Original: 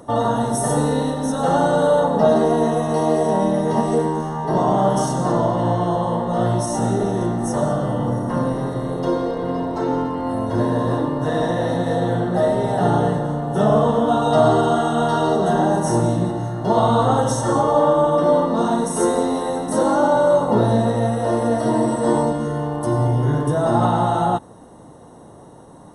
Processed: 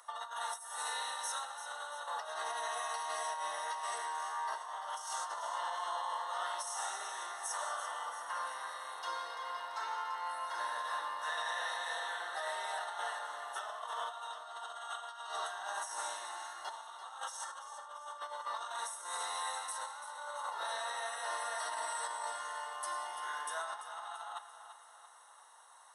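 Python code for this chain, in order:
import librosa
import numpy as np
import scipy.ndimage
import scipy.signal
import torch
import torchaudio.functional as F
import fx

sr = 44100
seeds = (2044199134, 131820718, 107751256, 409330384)

y = scipy.signal.sosfilt(scipy.signal.butter(4, 1100.0, 'highpass', fs=sr, output='sos'), x)
y = fx.over_compress(y, sr, threshold_db=-33.0, ratio=-0.5)
y = fx.echo_feedback(y, sr, ms=339, feedback_pct=53, wet_db=-11.0)
y = F.gain(torch.from_numpy(y), -7.0).numpy()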